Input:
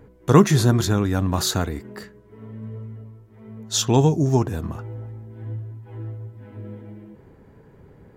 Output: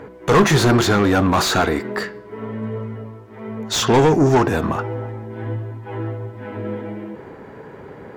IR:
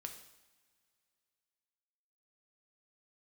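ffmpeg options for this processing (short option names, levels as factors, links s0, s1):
-filter_complex "[0:a]asplit=2[s0][s1];[s1]highpass=f=720:p=1,volume=31.6,asoftclip=type=tanh:threshold=0.891[s2];[s0][s2]amix=inputs=2:normalize=0,lowpass=f=1900:p=1,volume=0.501,bandreject=f=168.6:t=h:w=4,bandreject=f=337.2:t=h:w=4,bandreject=f=505.8:t=h:w=4,bandreject=f=674.4:t=h:w=4,bandreject=f=843:t=h:w=4,bandreject=f=1011.6:t=h:w=4,bandreject=f=1180.2:t=h:w=4,bandreject=f=1348.8:t=h:w=4,bandreject=f=1517.4:t=h:w=4,bandreject=f=1686:t=h:w=4,bandreject=f=1854.6:t=h:w=4,bandreject=f=2023.2:t=h:w=4,bandreject=f=2191.8:t=h:w=4,bandreject=f=2360.4:t=h:w=4,bandreject=f=2529:t=h:w=4,bandreject=f=2697.6:t=h:w=4,bandreject=f=2866.2:t=h:w=4,bandreject=f=3034.8:t=h:w=4,bandreject=f=3203.4:t=h:w=4,bandreject=f=3372:t=h:w=4,bandreject=f=3540.6:t=h:w=4,bandreject=f=3709.2:t=h:w=4,bandreject=f=3877.8:t=h:w=4,bandreject=f=4046.4:t=h:w=4,bandreject=f=4215:t=h:w=4,bandreject=f=4383.6:t=h:w=4,bandreject=f=4552.2:t=h:w=4,bandreject=f=4720.8:t=h:w=4,bandreject=f=4889.4:t=h:w=4,bandreject=f=5058:t=h:w=4,bandreject=f=5226.6:t=h:w=4,bandreject=f=5395.2:t=h:w=4,bandreject=f=5563.8:t=h:w=4,bandreject=f=5732.4:t=h:w=4,volume=0.668"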